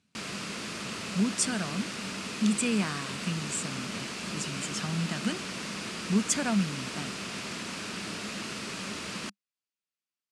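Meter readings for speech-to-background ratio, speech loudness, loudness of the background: 4.0 dB, -31.5 LUFS, -35.5 LUFS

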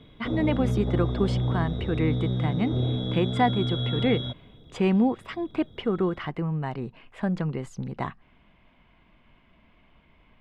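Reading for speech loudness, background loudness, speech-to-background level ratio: -28.5 LUFS, -28.5 LUFS, 0.0 dB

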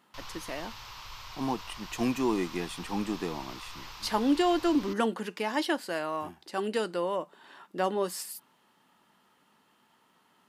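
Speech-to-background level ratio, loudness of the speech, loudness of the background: 13.0 dB, -31.0 LUFS, -44.0 LUFS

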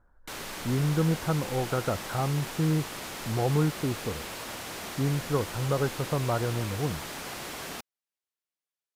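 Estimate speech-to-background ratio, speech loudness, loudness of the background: 7.5 dB, -29.5 LUFS, -37.0 LUFS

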